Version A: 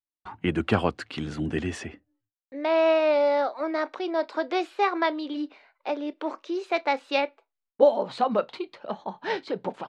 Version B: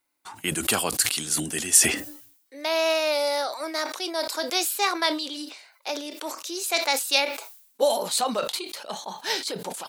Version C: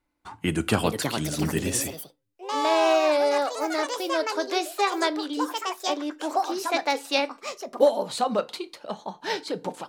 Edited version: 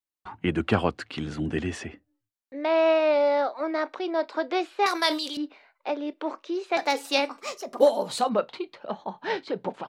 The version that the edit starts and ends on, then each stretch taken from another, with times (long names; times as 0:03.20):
A
0:04.86–0:05.37: punch in from B
0:06.77–0:08.29: punch in from C